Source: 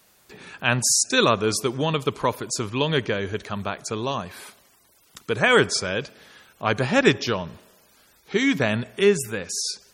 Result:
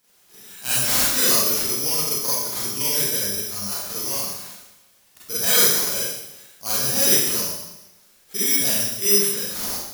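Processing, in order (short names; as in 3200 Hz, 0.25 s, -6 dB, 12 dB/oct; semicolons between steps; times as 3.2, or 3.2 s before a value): careless resampling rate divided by 8×, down none, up zero stuff; Schroeder reverb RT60 0.92 s, combs from 31 ms, DRR -9.5 dB; gain -17.5 dB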